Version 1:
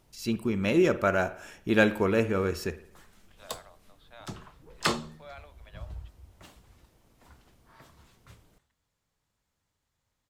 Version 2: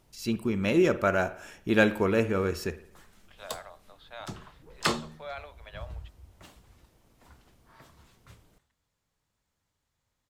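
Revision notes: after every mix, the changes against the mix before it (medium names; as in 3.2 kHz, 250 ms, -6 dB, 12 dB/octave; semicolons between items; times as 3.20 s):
second voice +7.0 dB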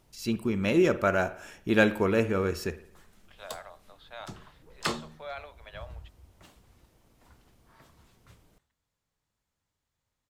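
background -3.5 dB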